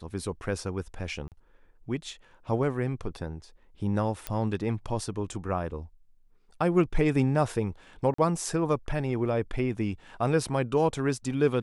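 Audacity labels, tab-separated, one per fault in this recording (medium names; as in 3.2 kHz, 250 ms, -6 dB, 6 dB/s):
1.280000	1.320000	dropout 38 ms
4.270000	4.270000	pop -15 dBFS
8.140000	8.180000	dropout 44 ms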